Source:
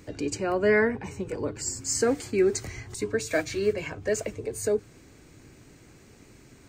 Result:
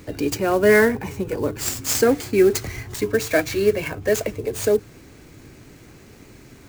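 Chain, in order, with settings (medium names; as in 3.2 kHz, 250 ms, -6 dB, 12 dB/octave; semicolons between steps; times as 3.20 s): sampling jitter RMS 0.02 ms; trim +7 dB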